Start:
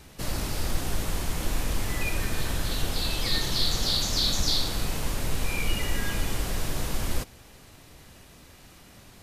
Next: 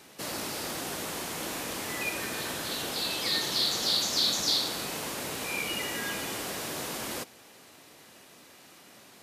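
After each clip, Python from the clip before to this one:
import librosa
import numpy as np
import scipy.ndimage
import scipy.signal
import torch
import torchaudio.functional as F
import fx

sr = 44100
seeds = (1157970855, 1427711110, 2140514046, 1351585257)

y = scipy.signal.sosfilt(scipy.signal.butter(2, 260.0, 'highpass', fs=sr, output='sos'), x)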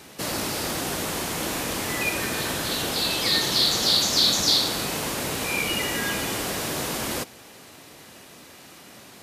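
y = fx.low_shelf(x, sr, hz=130.0, db=8.0)
y = y * 10.0 ** (6.5 / 20.0)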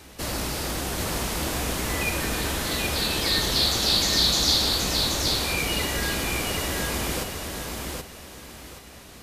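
y = fx.octave_divider(x, sr, octaves=2, level_db=3.0)
y = fx.echo_feedback(y, sr, ms=776, feedback_pct=27, wet_db=-4.0)
y = y * 10.0 ** (-2.0 / 20.0)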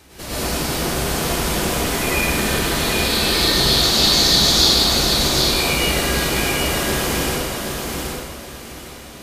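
y = fx.rev_plate(x, sr, seeds[0], rt60_s=1.3, hf_ratio=0.75, predelay_ms=90, drr_db=-9.0)
y = y * 10.0 ** (-2.0 / 20.0)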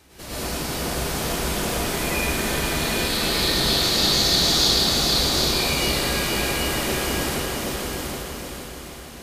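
y = fx.echo_feedback(x, sr, ms=465, feedback_pct=42, wet_db=-5)
y = y * 10.0 ** (-5.5 / 20.0)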